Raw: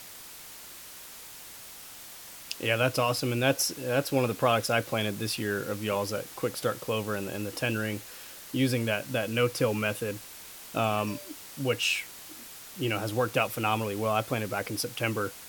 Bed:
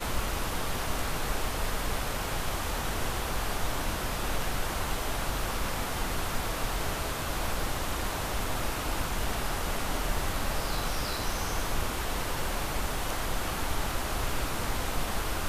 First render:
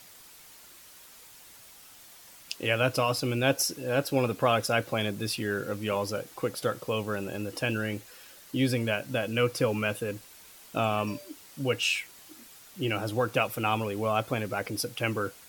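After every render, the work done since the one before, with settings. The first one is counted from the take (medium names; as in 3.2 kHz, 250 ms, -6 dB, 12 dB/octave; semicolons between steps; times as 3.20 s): noise reduction 7 dB, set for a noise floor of -46 dBFS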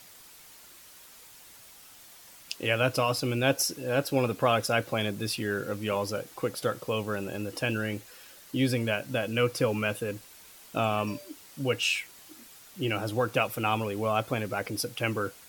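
no audible change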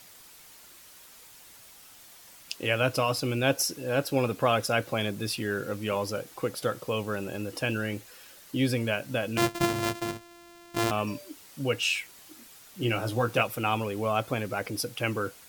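9.37–10.91 s: sorted samples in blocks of 128 samples; 12.79–13.43 s: doubling 17 ms -5 dB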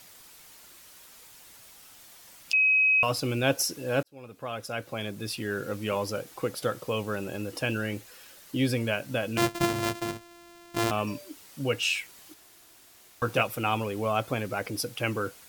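2.53–3.03 s: bleep 2.54 kHz -18.5 dBFS; 4.03–5.75 s: fade in; 12.34–13.22 s: room tone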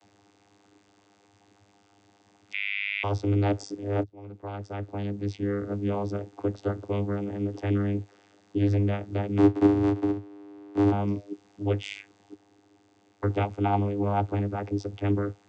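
small resonant body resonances 330/770 Hz, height 11 dB, ringing for 40 ms; vocoder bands 16, saw 101 Hz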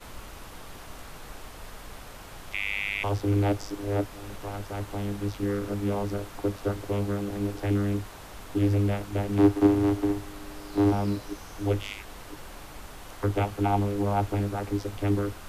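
add bed -12 dB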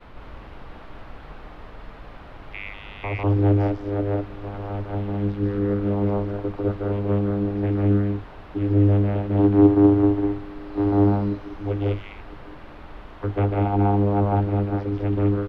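distance through air 370 m; loudspeakers at several distances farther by 51 m -2 dB, 68 m -2 dB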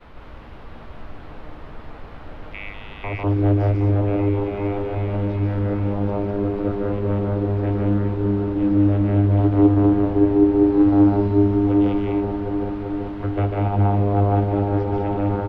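doubling 13 ms -12.5 dB; delay with an opening low-pass 384 ms, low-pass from 400 Hz, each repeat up 1 oct, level 0 dB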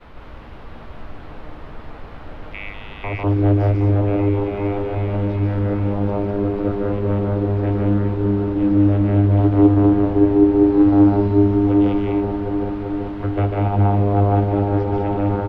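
trim +2 dB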